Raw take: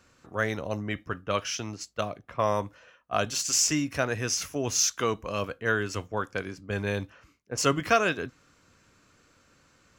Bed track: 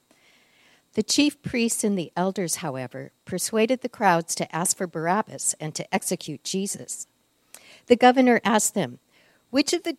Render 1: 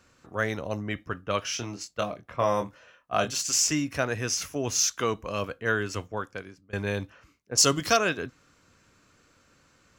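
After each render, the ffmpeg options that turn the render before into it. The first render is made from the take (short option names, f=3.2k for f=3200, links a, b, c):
-filter_complex "[0:a]asettb=1/sr,asplit=3[a][b][c];[a]atrim=end=1.414[d];[b]atrim=start=1.41:end=3.31,asetpts=PTS-STARTPTS,afade=t=in:d=0.004:c=qsin,afade=t=out:st=1.896:d=0.004:c=qsin,asplit=2[e][f];[f]adelay=25,volume=-6dB[g];[e][g]amix=inputs=2:normalize=0,atrim=end_sample=83790[h];[c]atrim=start=3.306[i];[d][h]acrossfade=d=0.004:c1=hsin:c2=qsin[j];[j][i]acrossfade=d=0.004:c1=qsin:c2=hsin,asettb=1/sr,asplit=3[k][l][m];[k]atrim=end=7.554[n];[l]atrim=start=7.55:end=7.97,asetpts=PTS-STARTPTS,afade=t=in:d=0.004:c=qsin,afade=t=out:st=0.416:d=0.004:c=qsin,highshelf=f=3.2k:t=q:w=1.5:g=8.5[o];[m]atrim=start=7.966[p];[n][o]acrossfade=d=0.004:c1=hsin:c2=qsin[q];[q][p]acrossfade=d=0.004:c1=qsin:c2=hsin,asplit=2[r][s];[r]atrim=end=6.73,asetpts=PTS-STARTPTS,afade=t=out:st=6:d=0.73:silence=0.0794328[t];[s]atrim=start=6.73,asetpts=PTS-STARTPTS,afade=t=in:d=0.004:c=hsin:silence=0.0794328[u];[t][u]concat=n=2:v=0:a=1"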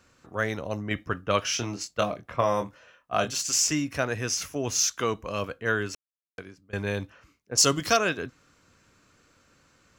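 -filter_complex "[0:a]asplit=5[a][b][c][d][e];[a]atrim=end=0.912[f];[b]atrim=start=0.908:end=2.412,asetpts=PTS-STARTPTS,volume=3.5dB[g];[c]atrim=start=2.408:end=5.95,asetpts=PTS-STARTPTS,afade=t=out:st=3.538:d=0.004:c=hsin[h];[d]atrim=start=5.95:end=6.38,asetpts=PTS-STARTPTS,volume=0[i];[e]atrim=start=6.38,asetpts=PTS-STARTPTS,afade=t=in:d=0.004:c=hsin[j];[f][g]acrossfade=d=0.004:c1=hsin:c2=hsin[k];[h][i][j]concat=n=3:v=0:a=1[l];[k][l]acrossfade=d=0.004:c1=hsin:c2=hsin"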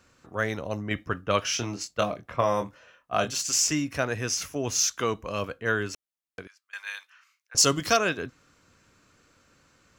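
-filter_complex "[0:a]asettb=1/sr,asplit=3[a][b][c];[a]atrim=end=6.474[d];[b]atrim=start=6.47:end=7.55,asetpts=PTS-STARTPTS,afade=t=in:d=0.004:c=qsin,afade=t=out:st=1.076:d=0.004:c=qsin,highpass=f=1.2k:w=0.5412,highpass=f=1.2k:w=1.3066[e];[c]atrim=start=7.546[f];[d][e]acrossfade=d=0.004:c1=hsin:c2=qsin[g];[g][f]acrossfade=d=0.004:c1=qsin:c2=hsin"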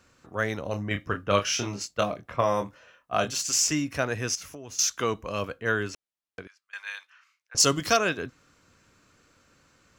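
-filter_complex "[0:a]asettb=1/sr,asplit=3[a][b][c];[a]atrim=end=0.634[d];[b]atrim=start=0.63:end=1.86,asetpts=PTS-STARTPTS,afade=t=in:d=0.004:c=qsin,afade=t=out:st=1.226:d=0.004:c=qsin,asplit=2[e][f];[f]adelay=30,volume=-6.5dB[g];[e][g]amix=inputs=2:normalize=0,atrim=end_sample=54243[h];[c]atrim=start=1.856[i];[d][h]acrossfade=d=0.004:c1=hsin:c2=qsin[j];[j][i]acrossfade=d=0.004:c1=qsin:c2=hsin,asettb=1/sr,asplit=3[k][l][m];[k]atrim=end=4.354[n];[l]atrim=start=4.35:end=4.79,asetpts=PTS-STARTPTS,afade=t=in:d=0.004:c=qsin,afade=t=out:st=0.436:d=0.004:c=qsin,acompressor=threshold=-37dB:ratio=10:attack=3.2:release=140:knee=1:detection=peak[o];[m]atrim=start=4.786[p];[n][o]acrossfade=d=0.004:c1=hsin:c2=qsin[q];[q][p]acrossfade=d=0.004:c1=qsin:c2=hsin,asettb=1/sr,asplit=3[r][s][t];[r]atrim=end=5.904[u];[s]atrim=start=5.9:end=7.6,asetpts=PTS-STARTPTS,afade=t=in:d=0.004:c=qsin,afade=t=out:st=1.696:d=0.004:c=qsin,highshelf=f=9k:g=-11[v];[t]atrim=start=7.596[w];[u][v]acrossfade=d=0.004:c1=hsin:c2=qsin[x];[x][w]acrossfade=d=0.004:c1=qsin:c2=hsin"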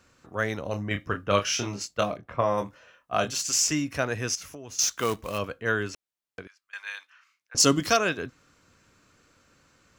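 -filter_complex "[0:a]asettb=1/sr,asplit=3[a][b][c];[a]atrim=end=2.174[d];[b]atrim=start=2.17:end=2.58,asetpts=PTS-STARTPTS,afade=t=in:d=0.004:c=qsin,afade=t=out:st=0.406:d=0.004:c=qsin,highshelf=f=3.4k:g=-10.5[e];[c]atrim=start=2.576[f];[d][e]acrossfade=d=0.004:c1=hsin:c2=qsin[g];[g][f]acrossfade=d=0.004:c1=qsin:c2=hsin,asplit=3[h][i][j];[h]afade=t=out:st=4.81:d=0.02[k];[i]acrusher=bits=3:mode=log:mix=0:aa=0.000001,afade=t=in:st=4.81:d=0.02,afade=t=out:st=5.37:d=0.02[l];[j]afade=t=in:st=5.37:d=0.02[m];[k][l][m]amix=inputs=3:normalize=0,asettb=1/sr,asplit=3[n][o][p];[n]atrim=end=6.824[q];[o]atrim=start=6.82:end=7.86,asetpts=PTS-STARTPTS,afade=t=in:d=0.004:c=qsin,afade=t=out:st=1.036:d=0.004:c=qsin,equalizer=f=250:t=o:w=0.97:g=7.5[r];[p]atrim=start=7.856[s];[q][r]acrossfade=d=0.004:c1=hsin:c2=qsin[t];[t][s]acrossfade=d=0.004:c1=qsin:c2=hsin"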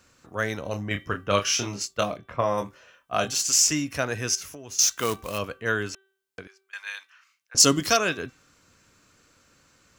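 -af "highshelf=f=4k:g=6,bandreject=f=386.6:t=h:w=4,bandreject=f=773.2:t=h:w=4,bandreject=f=1.1598k:t=h:w=4,bandreject=f=1.5464k:t=h:w=4,bandreject=f=1.933k:t=h:w=4,bandreject=f=2.3196k:t=h:w=4,bandreject=f=2.7062k:t=h:w=4,bandreject=f=3.0928k:t=h:w=4,bandreject=f=3.4794k:t=h:w=4,bandreject=f=3.866k:t=h:w=4"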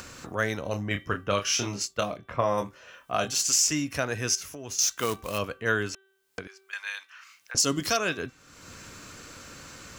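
-af "acompressor=mode=upward:threshold=-31dB:ratio=2.5,alimiter=limit=-12dB:level=0:latency=1:release=306"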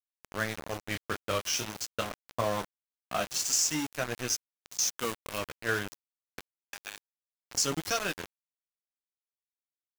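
-af "flanger=delay=8:depth=5.7:regen=-43:speed=0.47:shape=triangular,aeval=exprs='val(0)*gte(abs(val(0)),0.0266)':c=same"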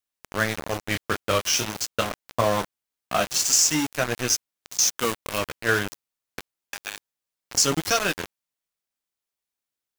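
-af "volume=8dB"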